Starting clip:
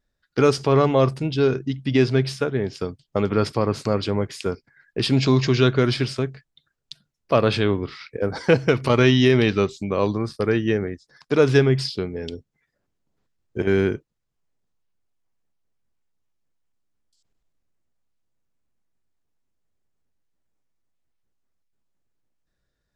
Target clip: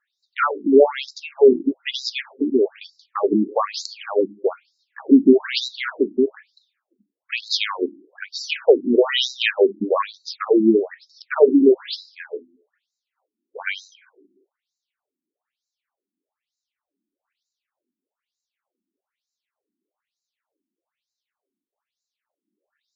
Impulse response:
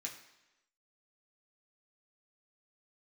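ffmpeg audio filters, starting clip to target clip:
-filter_complex "[0:a]acontrast=78,asplit=2[link_01][link_02];[1:a]atrim=start_sample=2205[link_03];[link_02][link_03]afir=irnorm=-1:irlink=0,volume=-11dB[link_04];[link_01][link_04]amix=inputs=2:normalize=0,afftfilt=real='re*between(b*sr/1024,250*pow(5400/250,0.5+0.5*sin(2*PI*1.1*pts/sr))/1.41,250*pow(5400/250,0.5+0.5*sin(2*PI*1.1*pts/sr))*1.41)':imag='im*between(b*sr/1024,250*pow(5400/250,0.5+0.5*sin(2*PI*1.1*pts/sr))/1.41,250*pow(5400/250,0.5+0.5*sin(2*PI*1.1*pts/sr))*1.41)':win_size=1024:overlap=0.75,volume=3dB"

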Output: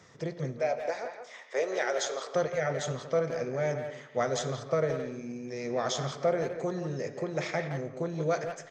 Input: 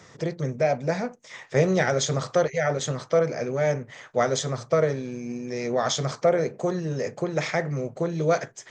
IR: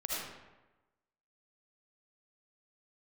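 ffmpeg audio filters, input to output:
-filter_complex "[0:a]asettb=1/sr,asplit=3[link_01][link_02][link_03];[link_01]atrim=end=0.594[link_04];[link_02]atrim=start=0.59:end=2.34,asetpts=PTS-STARTPTS,afade=type=in:duration=0.004:curve=qsin,afade=type=out:start_time=1.746:duration=0.004:curve=qsin,highpass=frequency=390:width=0.5412,highpass=frequency=390:width=1.3066[link_05];[link_03]atrim=start=2.336[link_06];[link_04][link_05]acrossfade=duration=0.004:curve1=hsin:curve2=qsin[link_07];[link_07][link_06]acrossfade=duration=0.004:curve1=qsin:curve2=hsin,asplit=2[link_08][link_09];[link_09]adelay=170,highpass=300,lowpass=3400,asoftclip=type=hard:threshold=-18.5dB,volume=-7dB[link_10];[link_08][link_10]amix=inputs=2:normalize=0,asplit=2[link_11][link_12];[1:a]atrim=start_sample=2205,lowpass=7200[link_13];[link_12][link_13]afir=irnorm=-1:irlink=0,volume=-16dB[link_14];[link_11][link_14]amix=inputs=2:normalize=0,volume=-7.5dB"

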